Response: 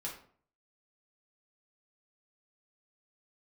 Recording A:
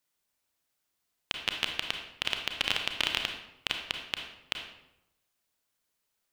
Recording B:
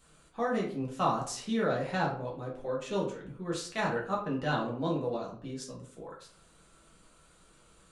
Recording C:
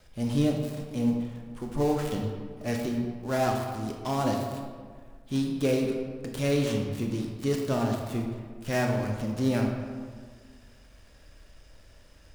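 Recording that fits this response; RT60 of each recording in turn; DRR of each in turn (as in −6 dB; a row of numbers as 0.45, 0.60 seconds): B; 0.85, 0.50, 1.7 seconds; 3.5, −4.0, 1.5 decibels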